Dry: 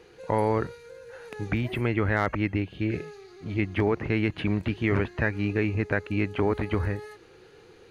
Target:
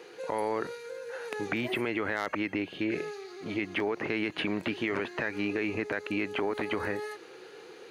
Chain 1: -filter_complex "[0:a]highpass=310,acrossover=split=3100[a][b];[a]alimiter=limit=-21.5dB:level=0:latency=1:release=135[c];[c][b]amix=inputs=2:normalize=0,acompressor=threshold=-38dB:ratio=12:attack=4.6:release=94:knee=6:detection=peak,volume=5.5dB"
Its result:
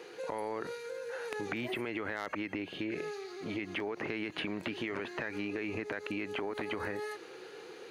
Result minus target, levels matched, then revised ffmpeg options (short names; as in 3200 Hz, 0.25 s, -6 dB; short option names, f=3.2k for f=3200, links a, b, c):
compressor: peak gain reduction +7 dB
-filter_complex "[0:a]highpass=310,acrossover=split=3100[a][b];[a]alimiter=limit=-21.5dB:level=0:latency=1:release=135[c];[c][b]amix=inputs=2:normalize=0,acompressor=threshold=-30.5dB:ratio=12:attack=4.6:release=94:knee=6:detection=peak,volume=5.5dB"